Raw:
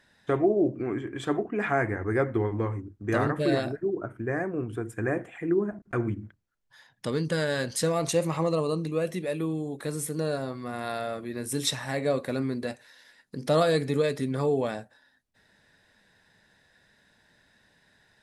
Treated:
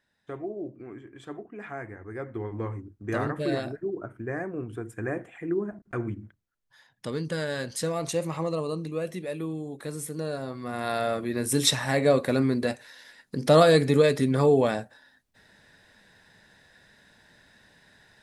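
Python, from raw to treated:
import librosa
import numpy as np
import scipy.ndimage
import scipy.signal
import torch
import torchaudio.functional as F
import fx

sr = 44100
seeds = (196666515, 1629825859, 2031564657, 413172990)

y = fx.gain(x, sr, db=fx.line((2.13, -12.0), (2.67, -3.0), (10.33, -3.0), (11.07, 5.5)))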